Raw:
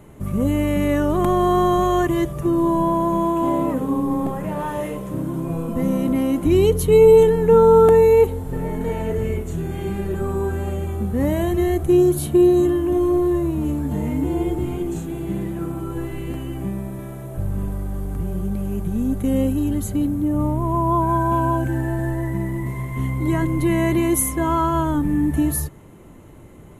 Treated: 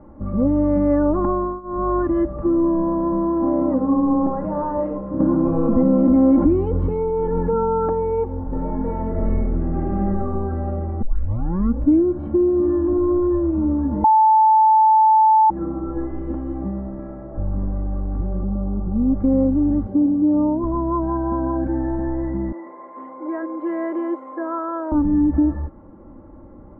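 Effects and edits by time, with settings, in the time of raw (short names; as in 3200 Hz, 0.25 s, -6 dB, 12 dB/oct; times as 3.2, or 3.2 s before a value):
1.29–1.95 dip -24 dB, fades 0.32 s
5.2–7.93 fast leveller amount 70%
9.1–10.08 reverb throw, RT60 0.99 s, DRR -3.5 dB
11.02 tape start 1.04 s
14.04–15.5 bleep 875 Hz -9.5 dBFS
18.43–19.15 steep low-pass 1500 Hz 72 dB/oct
19.87–20.64 speaker cabinet 140–8100 Hz, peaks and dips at 370 Hz +4 dB, 1300 Hz -7 dB, 2000 Hz -8 dB, 4700 Hz +9 dB
22.52–24.92 HPF 410 Hz 24 dB/oct
whole clip: compressor 3:1, threshold -17 dBFS; LPF 1300 Hz 24 dB/oct; comb 3.6 ms, depth 77%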